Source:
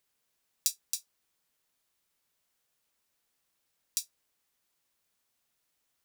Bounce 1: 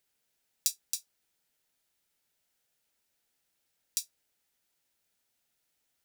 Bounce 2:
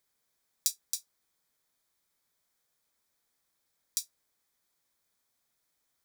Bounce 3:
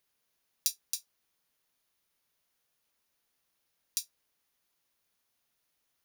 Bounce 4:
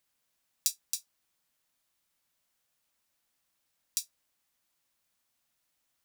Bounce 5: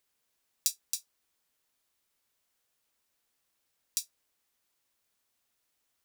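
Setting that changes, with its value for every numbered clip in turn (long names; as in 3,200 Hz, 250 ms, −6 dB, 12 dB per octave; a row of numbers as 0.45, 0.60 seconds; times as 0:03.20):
notch filter, centre frequency: 1,100, 2,800, 7,800, 420, 160 Hertz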